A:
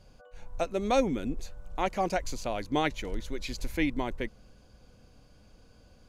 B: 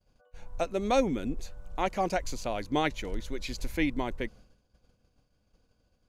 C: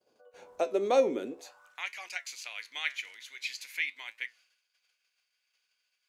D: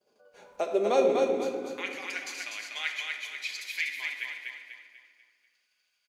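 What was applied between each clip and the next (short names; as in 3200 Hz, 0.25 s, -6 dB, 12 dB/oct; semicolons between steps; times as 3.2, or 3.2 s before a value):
expander -46 dBFS
in parallel at +0.5 dB: compressor, threshold -37 dBFS, peak gain reduction 16.5 dB; on the sum: high-pass sweep 390 Hz -> 2200 Hz, 1.25–1.84; flange 0.47 Hz, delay 7.8 ms, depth 9.5 ms, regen +72%; gain -1 dB
feedback echo 0.245 s, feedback 42%, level -4 dB; reverb RT60 1.7 s, pre-delay 5 ms, DRR 3.5 dB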